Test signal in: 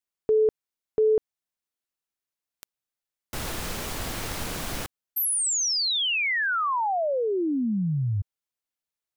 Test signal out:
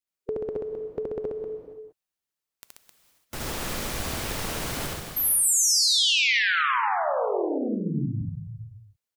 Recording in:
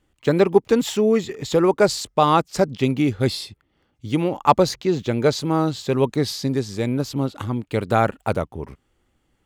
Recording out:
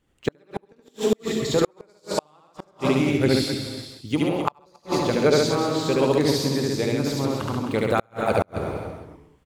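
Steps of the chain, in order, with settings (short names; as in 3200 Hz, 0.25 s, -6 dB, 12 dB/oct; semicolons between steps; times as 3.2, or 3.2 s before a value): non-linear reverb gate 0.49 s flat, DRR 5.5 dB; harmonic-percussive split harmonic -8 dB; loudspeakers at several distances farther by 25 m -1 dB, 46 m -4 dB, 90 m -8 dB; flipped gate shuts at -8 dBFS, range -39 dB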